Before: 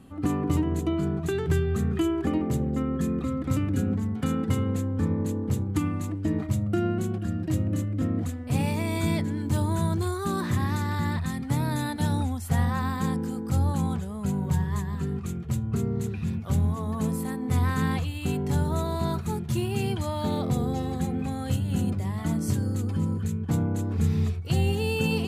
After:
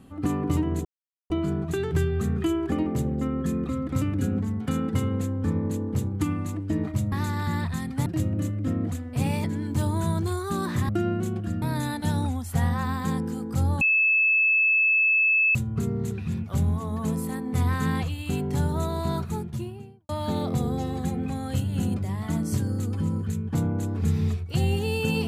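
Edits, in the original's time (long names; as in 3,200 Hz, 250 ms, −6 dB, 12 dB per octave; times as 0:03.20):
0:00.85: splice in silence 0.45 s
0:06.67–0:07.40: swap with 0:10.64–0:11.58
0:08.78–0:09.19: remove
0:13.77–0:15.51: beep over 2,610 Hz −17.5 dBFS
0:19.14–0:20.05: fade out and dull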